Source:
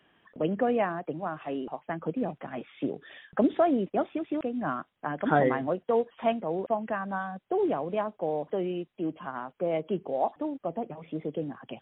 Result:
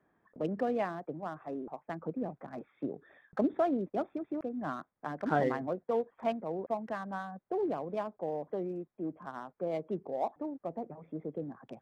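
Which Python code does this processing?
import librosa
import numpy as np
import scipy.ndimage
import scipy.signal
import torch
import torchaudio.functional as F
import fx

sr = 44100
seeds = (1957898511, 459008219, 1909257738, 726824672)

y = fx.wiener(x, sr, points=15)
y = y * librosa.db_to_amplitude(-5.5)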